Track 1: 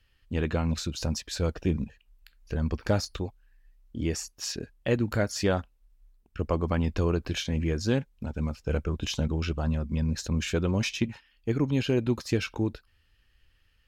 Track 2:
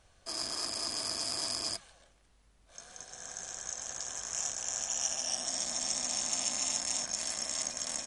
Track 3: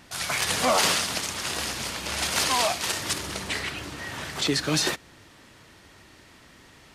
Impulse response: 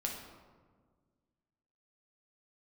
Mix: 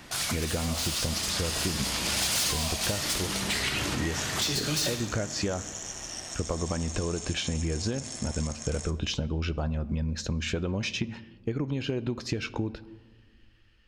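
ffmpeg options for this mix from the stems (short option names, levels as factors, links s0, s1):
-filter_complex "[0:a]lowpass=6700,equalizer=f=610:t=o:w=0.77:g=2.5,acompressor=threshold=0.0447:ratio=6,volume=1.33,asplit=3[s0][s1][s2];[s1]volume=0.188[s3];[1:a]acompressor=threshold=0.00891:ratio=6,adelay=850,volume=1.26,asplit=2[s4][s5];[s5]volume=0.531[s6];[2:a]acrossover=split=130|3000[s7][s8][s9];[s8]acompressor=threshold=0.0112:ratio=3[s10];[s7][s10][s9]amix=inputs=3:normalize=0,asoftclip=type=hard:threshold=0.0422,dynaudnorm=f=120:g=21:m=2.24,volume=0.944,asplit=2[s11][s12];[s12]volume=0.668[s13];[s2]apad=whole_len=306346[s14];[s11][s14]sidechaincompress=threshold=0.00794:ratio=8:attack=16:release=460[s15];[3:a]atrim=start_sample=2205[s16];[s3][s6][s13]amix=inputs=3:normalize=0[s17];[s17][s16]afir=irnorm=-1:irlink=0[s18];[s0][s4][s15][s18]amix=inputs=4:normalize=0,acompressor=threshold=0.0562:ratio=6"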